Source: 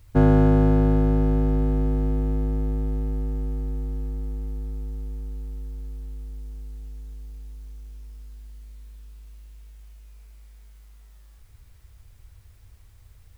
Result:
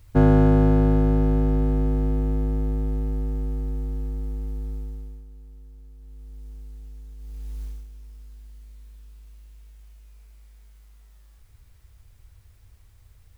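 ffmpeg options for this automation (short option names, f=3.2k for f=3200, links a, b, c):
-af "volume=19dB,afade=t=out:st=4.73:d=0.52:silence=0.266073,afade=t=in:st=5.97:d=0.53:silence=0.398107,afade=t=in:st=7.17:d=0.46:silence=0.298538,afade=t=out:st=7.63:d=0.24:silence=0.334965"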